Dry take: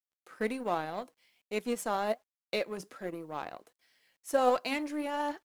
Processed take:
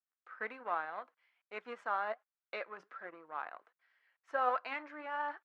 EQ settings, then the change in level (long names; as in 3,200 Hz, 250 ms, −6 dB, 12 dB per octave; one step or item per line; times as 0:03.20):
high-pass with resonance 1,400 Hz, resonance Q 2.1
head-to-tape spacing loss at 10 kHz 31 dB
spectral tilt −4 dB per octave
+3.0 dB